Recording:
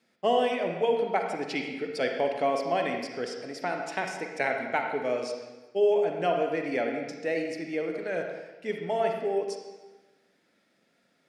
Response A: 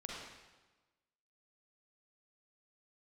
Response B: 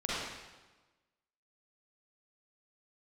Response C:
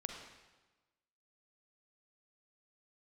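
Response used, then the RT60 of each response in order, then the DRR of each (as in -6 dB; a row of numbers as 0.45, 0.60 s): C; 1.2, 1.2, 1.2 s; -3.5, -8.5, 2.5 dB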